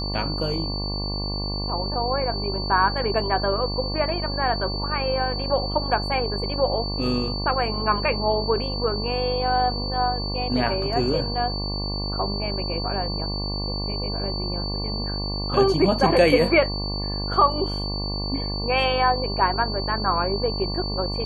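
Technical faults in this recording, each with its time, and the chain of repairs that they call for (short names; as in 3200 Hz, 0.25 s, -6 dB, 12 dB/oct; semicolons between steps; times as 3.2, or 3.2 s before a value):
buzz 50 Hz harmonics 23 -29 dBFS
tone 4500 Hz -30 dBFS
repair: notch 4500 Hz, Q 30; de-hum 50 Hz, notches 23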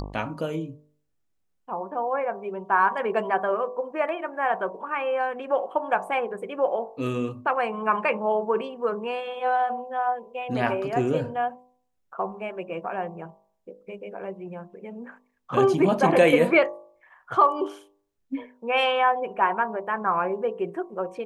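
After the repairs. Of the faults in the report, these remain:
none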